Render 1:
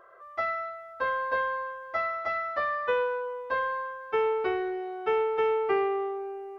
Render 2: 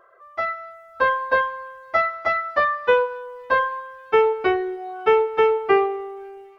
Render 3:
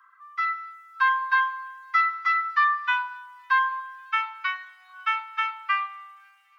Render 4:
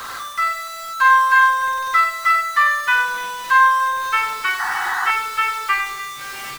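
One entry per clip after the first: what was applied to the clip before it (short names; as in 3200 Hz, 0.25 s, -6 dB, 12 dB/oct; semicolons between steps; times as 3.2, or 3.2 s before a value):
reverb removal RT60 0.95 s; AGC gain up to 10.5 dB; thin delay 0.275 s, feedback 78%, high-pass 4100 Hz, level -23 dB
steep high-pass 1000 Hz 72 dB/oct
zero-crossing step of -31 dBFS; tapped delay 41/98/296 ms -5.5/-8/-14 dB; painted sound noise, 4.59–5.11, 720–2000 Hz -27 dBFS; gain +4.5 dB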